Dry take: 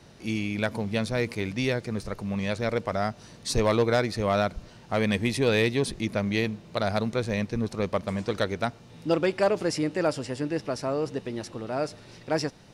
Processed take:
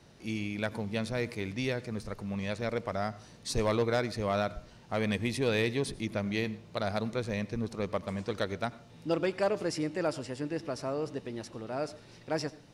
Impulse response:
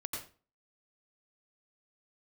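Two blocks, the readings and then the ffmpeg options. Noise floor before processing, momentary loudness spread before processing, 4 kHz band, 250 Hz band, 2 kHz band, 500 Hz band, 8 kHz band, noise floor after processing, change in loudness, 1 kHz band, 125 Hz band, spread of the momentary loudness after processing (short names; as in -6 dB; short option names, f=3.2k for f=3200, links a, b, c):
-50 dBFS, 9 LU, -5.5 dB, -5.5 dB, -5.5 dB, -5.5 dB, -5.5 dB, -54 dBFS, -5.5 dB, -5.5 dB, -5.5 dB, 9 LU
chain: -filter_complex "[0:a]asplit=2[a][b];[1:a]atrim=start_sample=2205[c];[b][c]afir=irnorm=-1:irlink=0,volume=-16.5dB[d];[a][d]amix=inputs=2:normalize=0,volume=-6.5dB"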